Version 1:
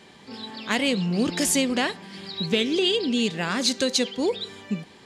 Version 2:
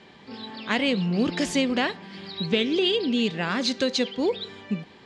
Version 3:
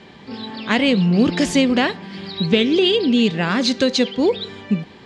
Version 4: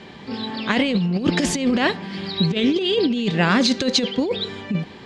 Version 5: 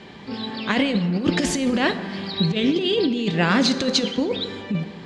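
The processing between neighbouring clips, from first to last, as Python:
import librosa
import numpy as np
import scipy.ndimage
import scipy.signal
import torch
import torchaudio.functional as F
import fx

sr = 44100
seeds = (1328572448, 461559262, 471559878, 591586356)

y1 = scipy.signal.sosfilt(scipy.signal.butter(2, 4200.0, 'lowpass', fs=sr, output='sos'), x)
y2 = fx.low_shelf(y1, sr, hz=280.0, db=5.0)
y2 = y2 * librosa.db_to_amplitude(5.5)
y3 = fx.over_compress(y2, sr, threshold_db=-18.0, ratio=-0.5)
y4 = fx.rev_plate(y3, sr, seeds[0], rt60_s=2.2, hf_ratio=0.45, predelay_ms=0, drr_db=10.5)
y4 = y4 * librosa.db_to_amplitude(-1.5)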